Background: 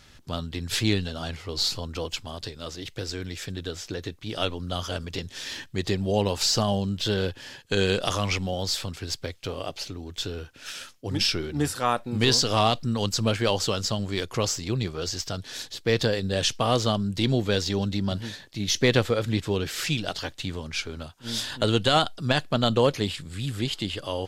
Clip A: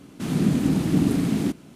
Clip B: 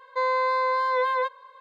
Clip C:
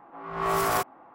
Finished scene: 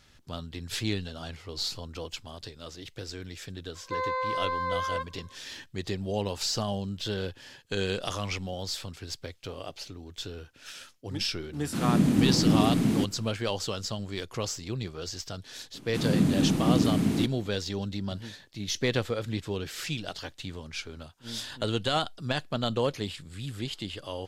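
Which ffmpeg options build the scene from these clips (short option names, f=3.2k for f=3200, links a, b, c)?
-filter_complex "[1:a]asplit=2[a][b];[0:a]volume=-6.5dB[c];[2:a]atrim=end=1.6,asetpts=PTS-STARTPTS,volume=-6.5dB,afade=t=in:d=0.004:c=hsin,afade=t=out:st=1.596:d=0.004:c=hsin,adelay=3750[d];[a]atrim=end=1.75,asetpts=PTS-STARTPTS,volume=-2dB,afade=t=in:d=0.004:c=hsin,afade=t=out:st=1.746:d=0.004:c=hsin,adelay=11530[e];[b]atrim=end=1.75,asetpts=PTS-STARTPTS,volume=-3dB,afade=t=in:d=0.004:c=hsin,afade=t=out:st=1.746:d=0.004:c=hsin,adelay=15740[f];[c][d][e][f]amix=inputs=4:normalize=0"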